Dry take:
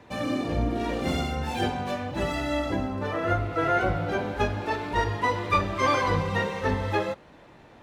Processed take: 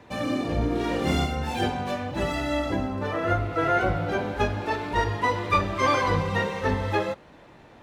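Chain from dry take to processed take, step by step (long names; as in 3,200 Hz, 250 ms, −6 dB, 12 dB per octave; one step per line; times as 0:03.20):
0:00.59–0:01.26: double-tracking delay 28 ms −2.5 dB
level +1 dB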